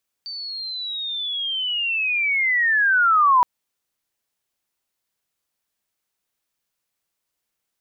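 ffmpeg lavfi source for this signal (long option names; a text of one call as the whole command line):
ffmpeg -f lavfi -i "aevalsrc='pow(10,(-29.5+18*t/3.17)/20)*sin(2*PI*(4600*t-3640*t*t/(2*3.17)))':duration=3.17:sample_rate=44100" out.wav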